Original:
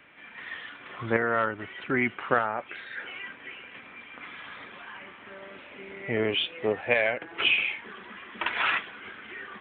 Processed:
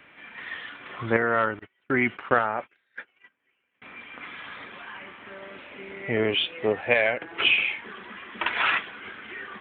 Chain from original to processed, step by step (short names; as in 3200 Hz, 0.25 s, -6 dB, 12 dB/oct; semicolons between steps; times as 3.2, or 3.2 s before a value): 1.59–3.82 gate -35 dBFS, range -33 dB; gain +2.5 dB